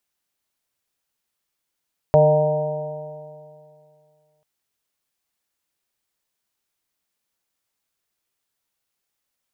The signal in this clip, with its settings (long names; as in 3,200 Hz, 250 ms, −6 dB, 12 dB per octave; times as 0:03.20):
stiff-string partials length 2.29 s, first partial 150 Hz, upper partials −19.5/−3/5.5/−6.5/−10 dB, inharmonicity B 0.002, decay 2.43 s, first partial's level −16 dB